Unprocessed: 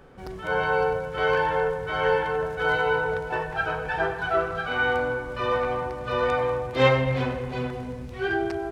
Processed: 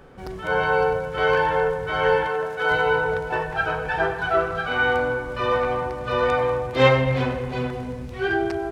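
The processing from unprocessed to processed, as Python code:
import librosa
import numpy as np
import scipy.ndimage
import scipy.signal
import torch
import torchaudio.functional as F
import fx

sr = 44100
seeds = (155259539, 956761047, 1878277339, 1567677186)

y = fx.highpass(x, sr, hz=350.0, slope=6, at=(2.27, 2.71))
y = y * librosa.db_to_amplitude(3.0)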